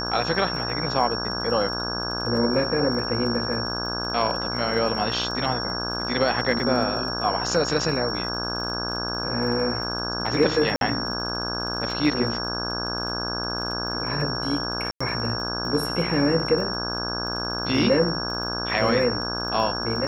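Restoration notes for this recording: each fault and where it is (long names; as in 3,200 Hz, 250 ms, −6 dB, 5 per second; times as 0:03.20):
mains buzz 60 Hz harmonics 28 −31 dBFS
surface crackle 34 per second −33 dBFS
whistle 5,500 Hz −29 dBFS
0:05.31: drop-out 3.4 ms
0:10.76–0:10.81: drop-out 52 ms
0:14.91–0:15.01: drop-out 95 ms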